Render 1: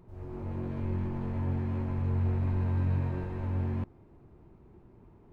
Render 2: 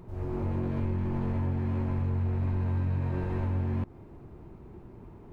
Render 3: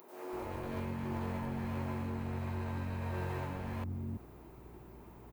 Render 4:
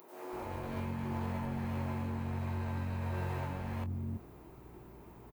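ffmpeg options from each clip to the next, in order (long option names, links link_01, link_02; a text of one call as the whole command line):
ffmpeg -i in.wav -af "acompressor=threshold=-34dB:ratio=6,volume=8dB" out.wav
ffmpeg -i in.wav -filter_complex "[0:a]aemphasis=mode=production:type=bsi,aeval=exprs='val(0)+0.00178*(sin(2*PI*60*n/s)+sin(2*PI*2*60*n/s)/2+sin(2*PI*3*60*n/s)/3+sin(2*PI*4*60*n/s)/4+sin(2*PI*5*60*n/s)/5)':channel_layout=same,acrossover=split=290[link_01][link_02];[link_01]adelay=330[link_03];[link_03][link_02]amix=inputs=2:normalize=0" out.wav
ffmpeg -i in.wav -filter_complex "[0:a]asplit=2[link_01][link_02];[link_02]adelay=23,volume=-10.5dB[link_03];[link_01][link_03]amix=inputs=2:normalize=0" out.wav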